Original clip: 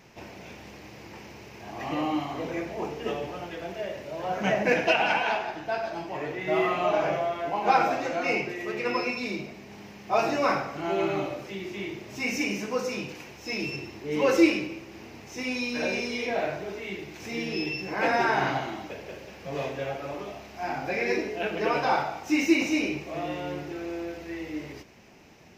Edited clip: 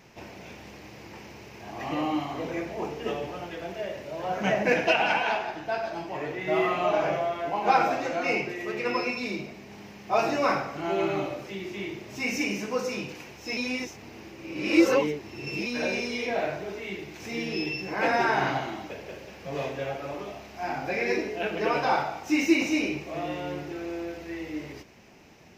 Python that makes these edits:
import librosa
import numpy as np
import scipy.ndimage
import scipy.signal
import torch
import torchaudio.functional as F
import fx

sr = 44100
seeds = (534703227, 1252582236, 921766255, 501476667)

y = fx.edit(x, sr, fx.reverse_span(start_s=13.57, length_s=2.09), tone=tone)